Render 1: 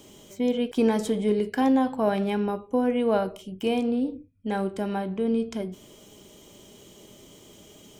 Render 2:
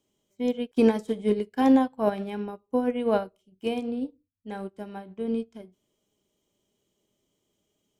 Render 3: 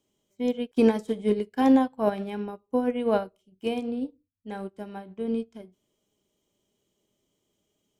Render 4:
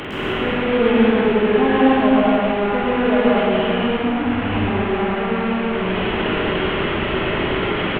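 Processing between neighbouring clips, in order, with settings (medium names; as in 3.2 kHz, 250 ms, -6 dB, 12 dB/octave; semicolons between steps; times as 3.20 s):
upward expansion 2.5:1, over -38 dBFS; trim +3.5 dB
no audible change
one-bit delta coder 16 kbps, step -23 dBFS; loudspeakers at several distances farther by 16 m -9 dB, 37 m -3 dB; plate-style reverb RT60 2 s, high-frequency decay 0.7×, pre-delay 115 ms, DRR -5.5 dB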